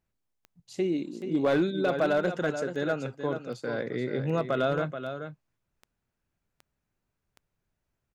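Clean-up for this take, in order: clip repair -18.5 dBFS; de-click; inverse comb 431 ms -9 dB

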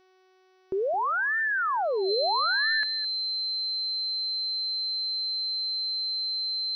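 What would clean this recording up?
de-hum 373.5 Hz, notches 16; band-stop 4.1 kHz, Q 30; inverse comb 214 ms -17 dB

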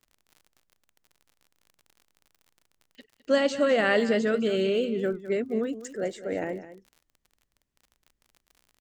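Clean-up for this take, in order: de-click; interpolate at 0.69/2.25/2.79/3.19 s, 7.7 ms; inverse comb 207 ms -14 dB

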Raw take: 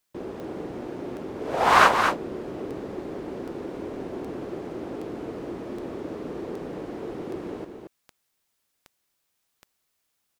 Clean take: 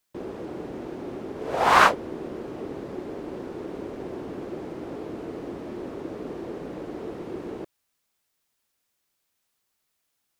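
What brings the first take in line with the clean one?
de-click; inverse comb 226 ms -6.5 dB

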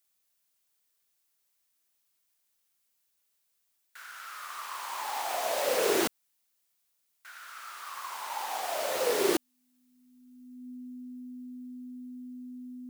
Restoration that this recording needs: band-stop 250 Hz, Q 30; expander -68 dBFS, range -21 dB

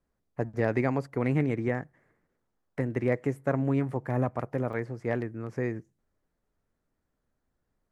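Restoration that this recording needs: interpolate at 2.21/4.73 s, 2.4 ms

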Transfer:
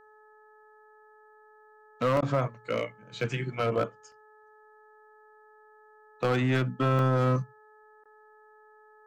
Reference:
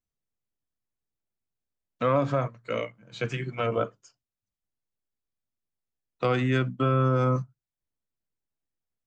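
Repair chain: clip repair -20 dBFS; de-hum 428.5 Hz, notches 4; interpolate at 2.17/3.21/4.12/6.99 s, 1.5 ms; interpolate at 2.21/8.04 s, 13 ms

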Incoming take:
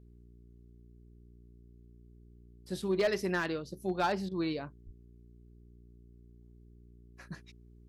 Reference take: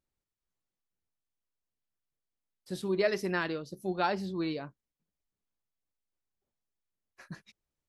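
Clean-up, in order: clip repair -23 dBFS; de-hum 59.1 Hz, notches 7; de-plosive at 4.85 s; interpolate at 4.29 s, 23 ms

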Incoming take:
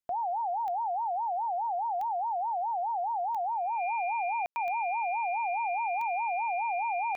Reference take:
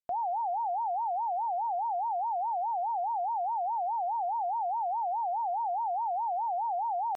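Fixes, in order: de-click; band-stop 2.4 kHz, Q 30; room tone fill 4.46–4.56 s

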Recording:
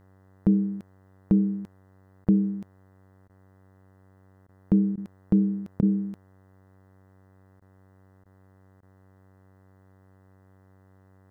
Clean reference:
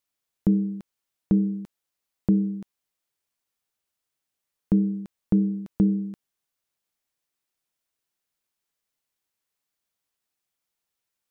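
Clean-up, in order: de-hum 95.2 Hz, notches 21; interpolate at 2.25/3.28/4.47/4.96/5.81/7.60/8.24/8.81 s, 14 ms

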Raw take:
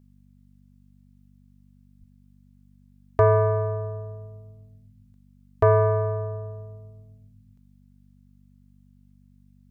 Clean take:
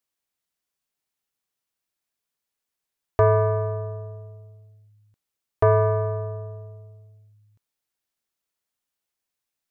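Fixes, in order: de-hum 48.6 Hz, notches 5; de-plosive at 1.99 s

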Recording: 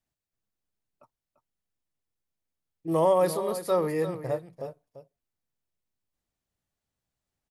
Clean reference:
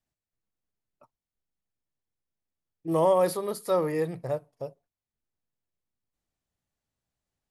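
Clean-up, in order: inverse comb 343 ms -12 dB

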